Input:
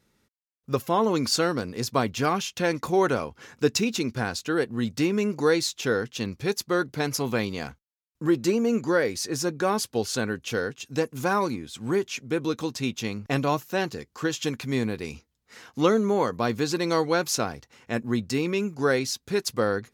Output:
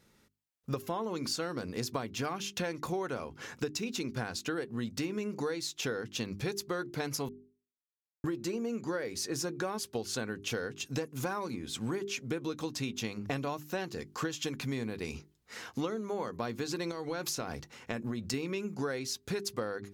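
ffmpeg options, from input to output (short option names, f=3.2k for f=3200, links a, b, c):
-filter_complex "[0:a]asettb=1/sr,asplit=3[a][b][c];[a]atrim=end=16.914[d];[b]atrim=start=16.91:end=18.34,asetpts=PTS-STARTPTS,afade=t=in:d=0.004:c=qsin,afade=t=out:st=1.426:d=0.004:c=qsin,acompressor=threshold=-29dB:ratio=12:attack=3.2:release=140:knee=1:detection=peak[e];[c]atrim=start=18.336[f];[d][e]acrossfade=d=0.004:c1=hsin:c2=qsin[g];[g][f]acrossfade=d=0.004:c1=qsin:c2=hsin,asplit=3[h][i][j];[h]atrim=end=7.29,asetpts=PTS-STARTPTS,afade=t=out:st=7.286:d=0.004:c=hsin[k];[i]atrim=start=7.29:end=8.24,asetpts=PTS-STARTPTS,volume=0[l];[j]atrim=start=8.24,asetpts=PTS-STARTPTS,afade=t=in:d=0.004:c=hsin[m];[k][l][m]concat=n=3:v=0:a=1,bandreject=f=50:t=h:w=6,bandreject=f=100:t=h:w=6,bandreject=f=150:t=h:w=6,bandreject=f=200:t=h:w=6,bandreject=f=250:t=h:w=6,bandreject=f=300:t=h:w=6,bandreject=f=350:t=h:w=6,bandreject=f=400:t=h:w=6,acompressor=threshold=-34dB:ratio=12,volume=2.5dB"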